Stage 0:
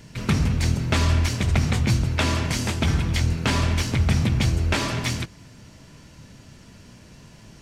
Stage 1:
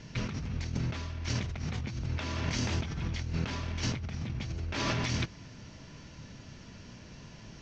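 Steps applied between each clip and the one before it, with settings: elliptic low-pass 6200 Hz, stop band 70 dB; negative-ratio compressor -28 dBFS, ratio -1; gain -6 dB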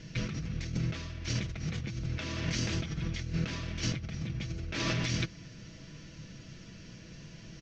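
bell 900 Hz -10.5 dB 0.67 oct; comb 6.1 ms, depth 41%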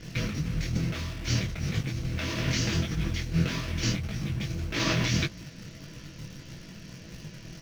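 in parallel at -11 dB: bit-crush 7-bit; on the sum: detuned doubles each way 58 cents; gain +7 dB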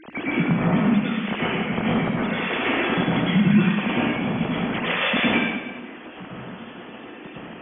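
sine-wave speech; plate-style reverb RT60 1.1 s, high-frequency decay 1×, pre-delay 95 ms, DRR -7.5 dB

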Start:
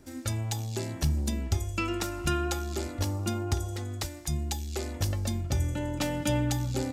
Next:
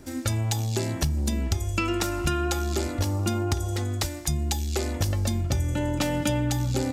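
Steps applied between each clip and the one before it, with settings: compressor, threshold -29 dBFS, peak gain reduction 8 dB; gain +7.5 dB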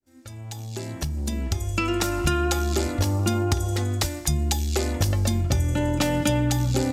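opening faded in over 2.19 s; gain +3 dB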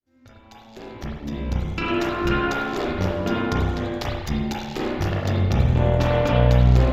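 added harmonics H 3 -14 dB, 6 -18 dB, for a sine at -7.5 dBFS; running mean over 5 samples; spring tank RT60 1 s, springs 32/49 ms, chirp 60 ms, DRR -5.5 dB

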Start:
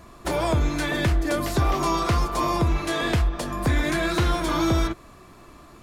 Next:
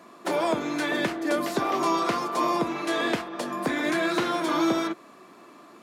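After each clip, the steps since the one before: HPF 210 Hz 24 dB/oct; high shelf 4900 Hz -6 dB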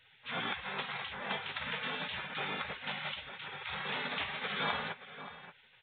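outdoor echo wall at 99 m, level -13 dB; spectral gate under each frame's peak -20 dB weak; gain +2 dB; µ-law 64 kbps 8000 Hz

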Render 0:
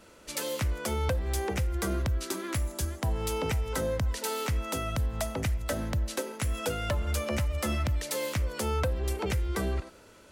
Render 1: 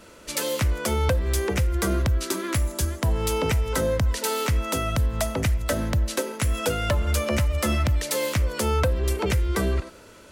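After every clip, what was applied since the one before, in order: notch 790 Hz, Q 12; gain +6.5 dB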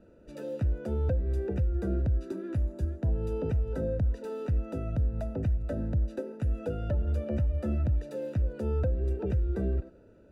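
running mean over 41 samples; gain -4.5 dB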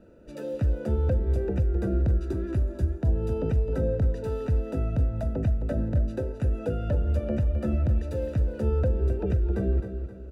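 feedback echo 0.263 s, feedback 41%, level -9 dB; gain +3.5 dB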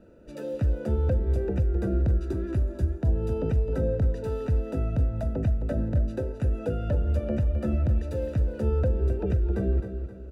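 nothing audible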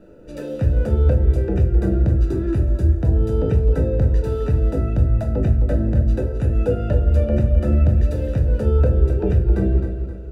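shoebox room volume 35 m³, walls mixed, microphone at 0.39 m; gain +5 dB

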